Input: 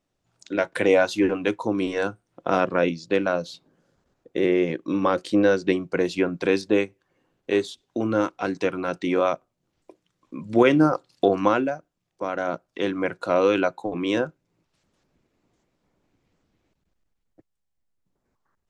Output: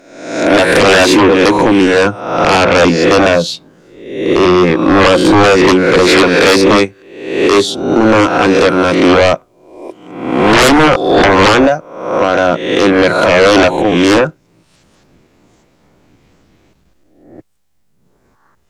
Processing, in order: reverse spectral sustain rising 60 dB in 0.76 s; 6.07–6.56 s: overdrive pedal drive 10 dB, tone 5.4 kHz, clips at -6.5 dBFS; sine folder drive 14 dB, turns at -3.5 dBFS

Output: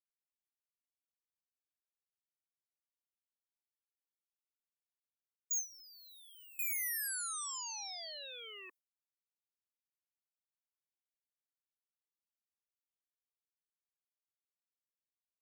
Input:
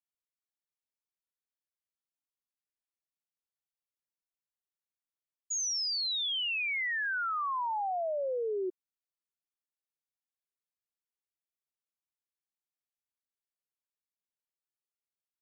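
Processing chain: Chebyshev shaper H 7 -9 dB, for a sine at -29 dBFS; gate with hold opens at -29 dBFS; differentiator

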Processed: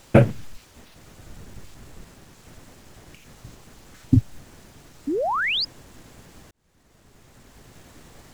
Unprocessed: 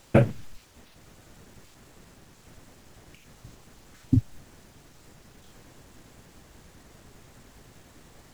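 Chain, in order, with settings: 1.19–2.04 s: bass shelf 120 Hz +9.5 dB; 5.07–5.65 s: painted sound rise 260–5200 Hz -28 dBFS; 6.51–7.85 s: fade in; trim +4.5 dB

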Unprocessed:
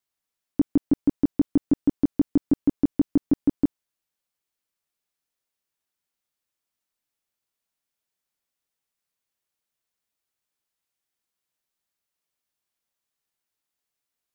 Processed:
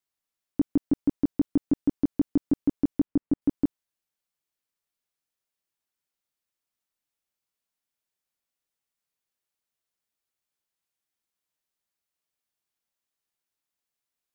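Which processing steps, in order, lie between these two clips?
3.02–3.42 s: distance through air 430 m; trim -3 dB

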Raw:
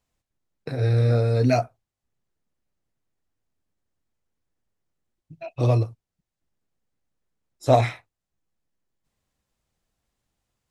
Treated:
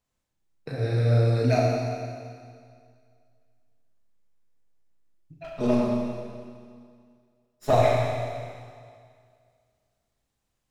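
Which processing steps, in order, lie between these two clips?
5.44–7.73 s: comb filter that takes the minimum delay 4.8 ms; Schroeder reverb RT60 2.1 s, combs from 29 ms, DRR -2.5 dB; trim -4.5 dB

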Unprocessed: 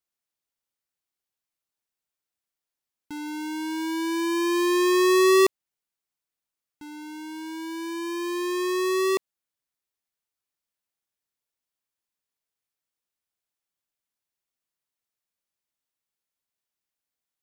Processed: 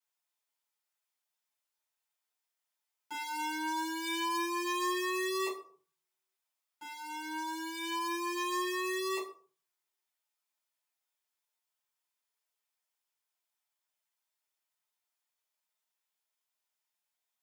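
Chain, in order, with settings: reverberation RT60 0.35 s, pre-delay 4 ms, DRR -7 dB; compression 6:1, threshold -17 dBFS, peak gain reduction 13 dB; high-pass 650 Hz 12 dB/octave; trim -8 dB

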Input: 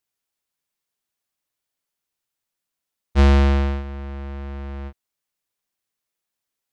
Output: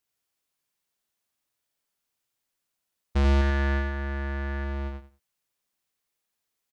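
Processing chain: 3.41–4.64 s: peaking EQ 1.7 kHz +12 dB 0.39 oct; peak limiter -19.5 dBFS, peak gain reduction 10 dB; feedback delay 90 ms, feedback 21%, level -4.5 dB

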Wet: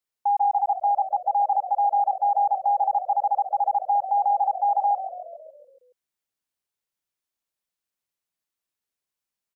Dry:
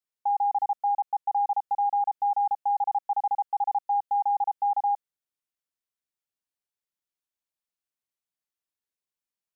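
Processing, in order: frequency-shifting echo 139 ms, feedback 59%, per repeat -45 Hz, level -11.5 dB; trim +3.5 dB

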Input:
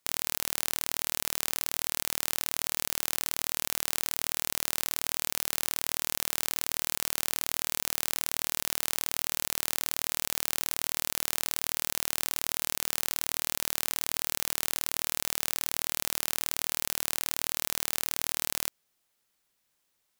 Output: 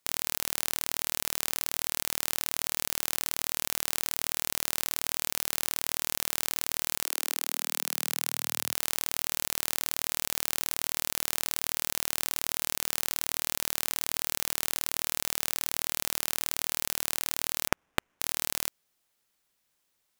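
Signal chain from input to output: 7.03–8.72 s: high-pass 340 Hz -> 100 Hz 24 dB/octave; 17.68–18.20 s: sample-rate reducer 4.4 kHz, jitter 20%

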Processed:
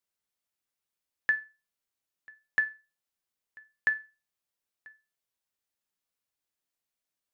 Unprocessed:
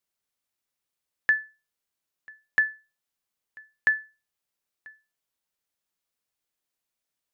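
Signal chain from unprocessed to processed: feedback comb 98 Hz, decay 0.29 s, harmonics all, mix 60%; trim +1.5 dB

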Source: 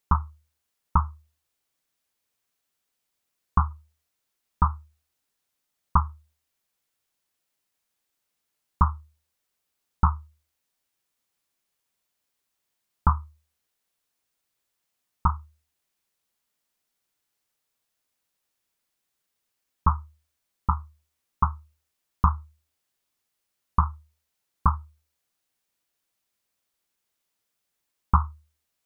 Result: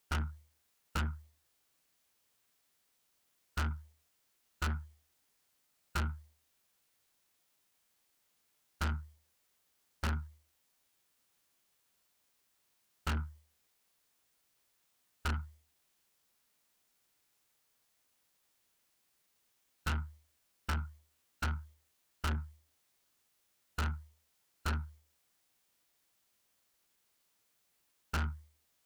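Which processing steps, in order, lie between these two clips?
valve stage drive 36 dB, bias 0.3; formant shift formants +4 st; trim +5 dB

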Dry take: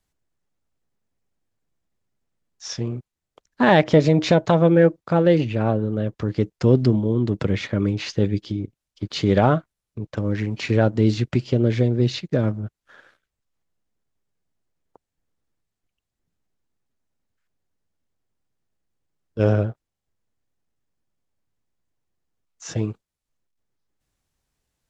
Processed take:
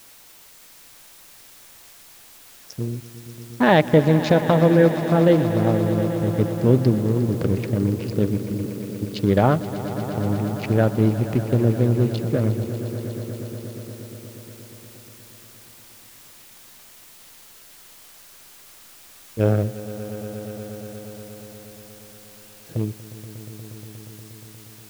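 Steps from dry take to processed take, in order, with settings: local Wiener filter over 41 samples; word length cut 8-bit, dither triangular; echo with a slow build-up 119 ms, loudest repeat 5, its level -16 dB

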